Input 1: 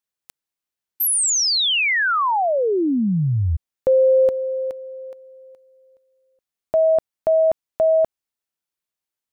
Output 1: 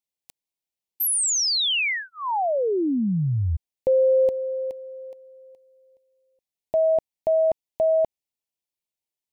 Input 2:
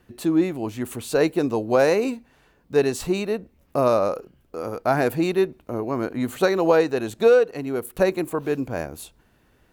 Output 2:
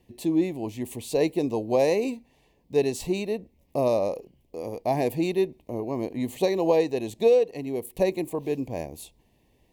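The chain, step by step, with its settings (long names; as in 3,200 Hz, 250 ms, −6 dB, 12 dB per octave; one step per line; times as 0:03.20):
Butterworth band-reject 1,400 Hz, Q 1.4
level −3.5 dB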